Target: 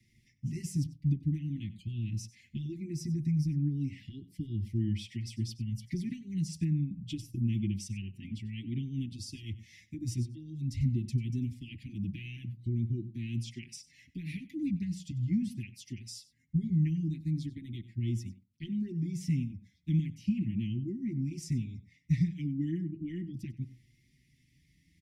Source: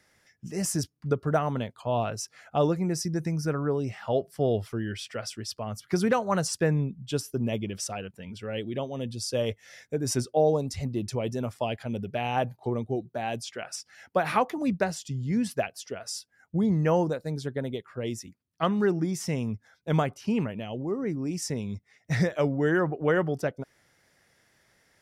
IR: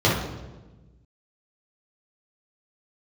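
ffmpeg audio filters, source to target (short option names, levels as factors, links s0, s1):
-filter_complex "[0:a]asplit=2[s0][s1];[s1]highpass=f=110:w=0.5412,highpass=f=110:w=1.3066[s2];[1:a]atrim=start_sample=2205,afade=t=out:st=0.19:d=0.01,atrim=end_sample=8820[s3];[s2][s3]afir=irnorm=-1:irlink=0,volume=0.0075[s4];[s0][s4]amix=inputs=2:normalize=0,acompressor=threshold=0.02:ratio=3,asuperstop=centerf=830:order=20:qfactor=0.51,bass=f=250:g=11,treble=f=4000:g=-6,aecho=1:1:95:0.126,asplit=2[s5][s6];[s6]adelay=5.8,afreqshift=0.38[s7];[s5][s7]amix=inputs=2:normalize=1"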